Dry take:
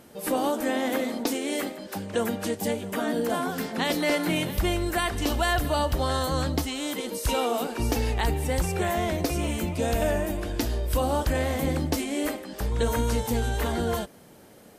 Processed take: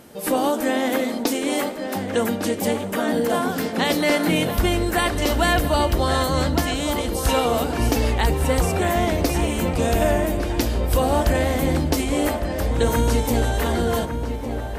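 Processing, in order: darkening echo 1.155 s, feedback 64%, low-pass 2500 Hz, level -8 dB; gain +5 dB

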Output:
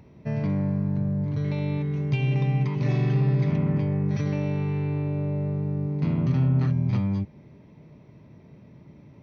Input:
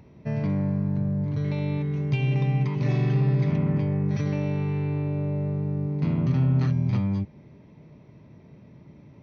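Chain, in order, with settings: 6.48–6.9 high shelf 3700 Hz -8 dB

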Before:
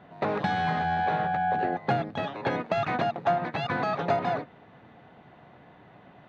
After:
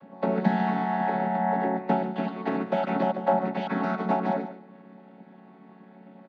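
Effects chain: chord vocoder minor triad, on F#3; echo 0.146 s -12.5 dB; on a send at -20.5 dB: reverb RT60 0.35 s, pre-delay 0.11 s; on the sum: gain +2 dB

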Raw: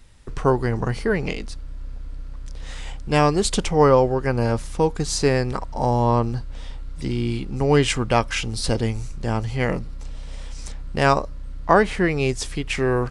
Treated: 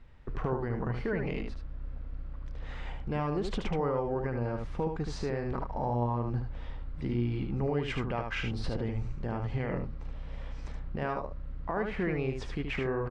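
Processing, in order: LPF 2100 Hz 12 dB/oct; compressor, threshold -21 dBFS, peak gain reduction 11 dB; limiter -19 dBFS, peak gain reduction 9.5 dB; echo 75 ms -5.5 dB; gain -4 dB

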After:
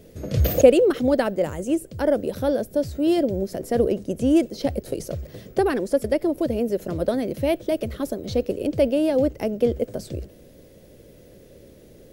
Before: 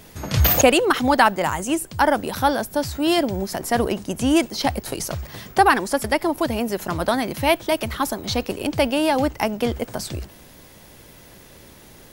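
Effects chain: resonant low shelf 690 Hz +9 dB, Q 3; gain -11 dB

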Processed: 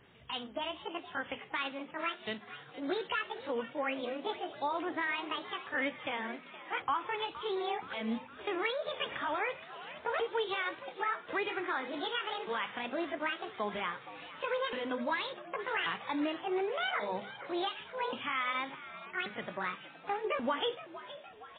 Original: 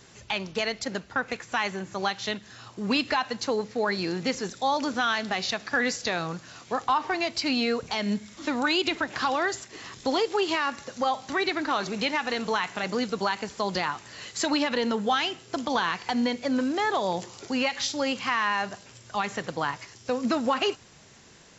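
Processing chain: repeated pitch sweeps +11 st, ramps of 1.133 s; notches 50/100/150/200/250 Hz; frequency-shifting echo 0.468 s, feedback 58%, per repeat +96 Hz, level -14.5 dB; gain -6.5 dB; MP3 16 kbps 8000 Hz

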